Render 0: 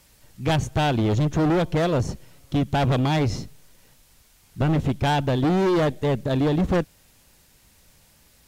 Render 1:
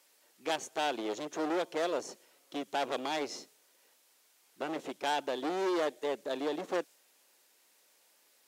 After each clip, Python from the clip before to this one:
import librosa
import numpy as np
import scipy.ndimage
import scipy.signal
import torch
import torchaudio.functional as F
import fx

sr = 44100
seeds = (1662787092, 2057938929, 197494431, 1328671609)

y = fx.dynamic_eq(x, sr, hz=7100.0, q=0.9, threshold_db=-51.0, ratio=4.0, max_db=4)
y = scipy.signal.sosfilt(scipy.signal.butter(4, 340.0, 'highpass', fs=sr, output='sos'), y)
y = F.gain(torch.from_numpy(y), -8.5).numpy()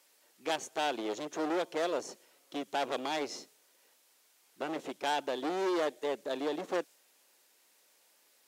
y = x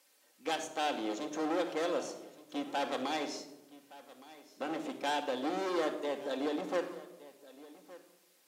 y = x + 10.0 ** (-19.0 / 20.0) * np.pad(x, (int(1167 * sr / 1000.0), 0))[:len(x)]
y = fx.room_shoebox(y, sr, seeds[0], volume_m3=3200.0, walls='furnished', distance_m=2.1)
y = F.gain(torch.from_numpy(y), -2.5).numpy()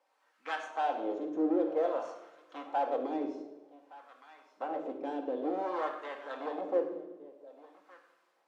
y = fx.wah_lfo(x, sr, hz=0.53, low_hz=340.0, high_hz=1400.0, q=2.1)
y = fx.rev_double_slope(y, sr, seeds[1], early_s=0.62, late_s=2.0, knee_db=-18, drr_db=6.0)
y = F.gain(torch.from_numpy(y), 5.5).numpy()